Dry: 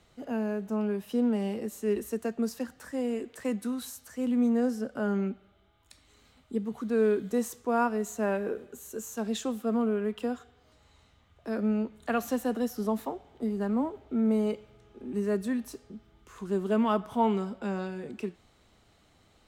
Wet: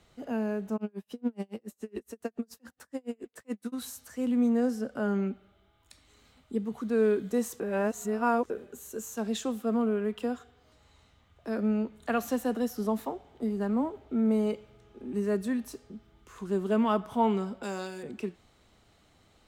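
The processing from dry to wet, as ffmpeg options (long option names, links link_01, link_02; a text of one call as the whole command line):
ffmpeg -i in.wav -filter_complex "[0:a]asplit=3[link_01][link_02][link_03];[link_01]afade=type=out:start_time=0.76:duration=0.02[link_04];[link_02]aeval=exprs='val(0)*pow(10,-40*(0.5-0.5*cos(2*PI*7.1*n/s))/20)':channel_layout=same,afade=type=in:start_time=0.76:duration=0.02,afade=type=out:start_time=3.72:duration=0.02[link_05];[link_03]afade=type=in:start_time=3.72:duration=0.02[link_06];[link_04][link_05][link_06]amix=inputs=3:normalize=0,asettb=1/sr,asplit=3[link_07][link_08][link_09];[link_07]atrim=end=17.634[link_10];[link_08]atrim=start=17.63:end=18.03,asetpts=PTS-STARTPTS,afade=type=in:duration=0.004:curve=qsin,afade=type=out:start_time=0.396:duration=0.004:curve=qsin,bass=frequency=250:gain=-10,treble=frequency=4000:gain=14[link_11];[link_09]atrim=start=18.026[link_12];[link_10][link_11]acrossfade=duration=0.004:curve1=hsin:curve2=qsin[link_13];[link_13][link_12]acrossfade=duration=0.004:curve1=qsin:curve2=hsin,asplit=3[link_14][link_15][link_16];[link_14]atrim=end=7.602[link_17];[link_15]atrim=start=7.598:end=8.502,asetpts=PTS-STARTPTS,areverse[link_18];[link_16]atrim=start=8.498[link_19];[link_17][link_18]acrossfade=duration=0.004:curve1=hsin:curve2=hsin[link_20];[link_20][link_19]acrossfade=duration=0.004:curve1=hsin:curve2=hsin" out.wav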